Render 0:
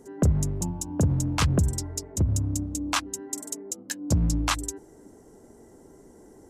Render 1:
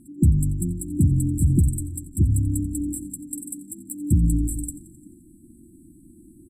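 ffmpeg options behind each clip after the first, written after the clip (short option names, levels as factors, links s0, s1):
-filter_complex "[0:a]afftfilt=real='re*(1-between(b*sr/4096,360,7600))':imag='im*(1-between(b*sr/4096,360,7600))':win_size=4096:overlap=0.75,asplit=7[s0][s1][s2][s3][s4][s5][s6];[s1]adelay=87,afreqshift=-46,volume=0.126[s7];[s2]adelay=174,afreqshift=-92,volume=0.0794[s8];[s3]adelay=261,afreqshift=-138,volume=0.0501[s9];[s4]adelay=348,afreqshift=-184,volume=0.0316[s10];[s5]adelay=435,afreqshift=-230,volume=0.0197[s11];[s6]adelay=522,afreqshift=-276,volume=0.0124[s12];[s0][s7][s8][s9][s10][s11][s12]amix=inputs=7:normalize=0,volume=1.68"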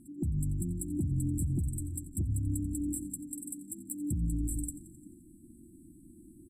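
-af "acompressor=threshold=0.1:ratio=6,alimiter=limit=0.119:level=0:latency=1:release=159,volume=0.562"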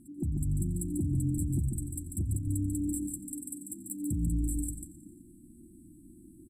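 -af "aecho=1:1:143:0.501"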